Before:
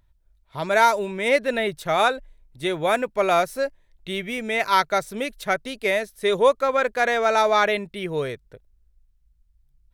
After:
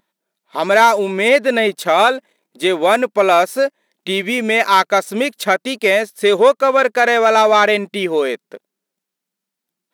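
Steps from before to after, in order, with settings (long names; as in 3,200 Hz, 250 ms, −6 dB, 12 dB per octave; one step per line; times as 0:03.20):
in parallel at +1.5 dB: downward compressor, threshold −29 dBFS, peak gain reduction 16 dB
on the sum: leveller curve on the samples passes 1
linear-phase brick-wall high-pass 180 Hz
level +2 dB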